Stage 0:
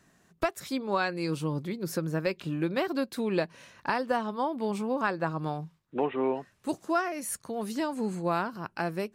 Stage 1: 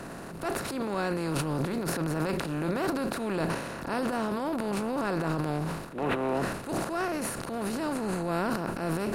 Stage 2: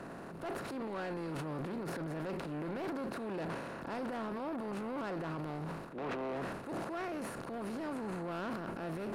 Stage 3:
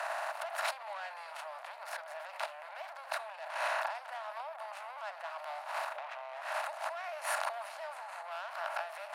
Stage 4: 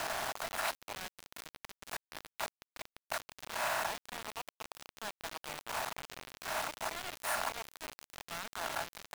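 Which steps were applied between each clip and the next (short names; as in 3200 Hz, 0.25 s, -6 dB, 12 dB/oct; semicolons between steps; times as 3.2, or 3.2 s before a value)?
per-bin compression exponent 0.4; low shelf 320 Hz +7.5 dB; transient shaper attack -9 dB, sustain +11 dB; gain -8.5 dB
high shelf 3400 Hz -12 dB; soft clip -30 dBFS, distortion -10 dB; low shelf 110 Hz -8 dB; gain -3.5 dB
negative-ratio compressor -43 dBFS, ratio -0.5; rippled Chebyshev high-pass 600 Hz, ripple 3 dB; gain +11 dB
requantised 6-bit, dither none; gain -1 dB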